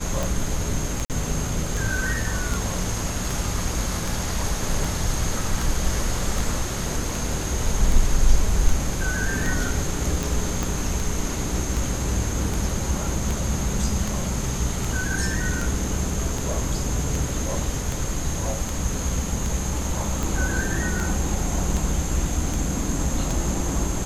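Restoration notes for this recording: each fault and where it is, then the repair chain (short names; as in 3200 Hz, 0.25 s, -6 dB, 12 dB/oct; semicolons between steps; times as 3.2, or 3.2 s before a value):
tick 78 rpm
1.05–1.1 gap 48 ms
10.63 pop -10 dBFS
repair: de-click; interpolate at 1.05, 48 ms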